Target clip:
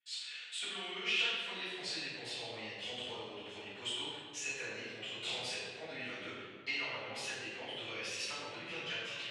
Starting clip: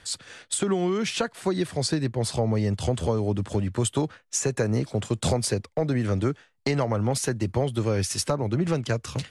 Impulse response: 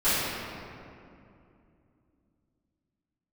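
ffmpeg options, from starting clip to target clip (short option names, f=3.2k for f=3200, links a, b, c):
-filter_complex "[0:a]bandpass=f=2.8k:t=q:w=3.7:csg=0,agate=range=-24dB:threshold=-60dB:ratio=16:detection=peak[a];[1:a]atrim=start_sample=2205,asetrate=70560,aresample=44100[b];[a][b]afir=irnorm=-1:irlink=0,volume=-7dB"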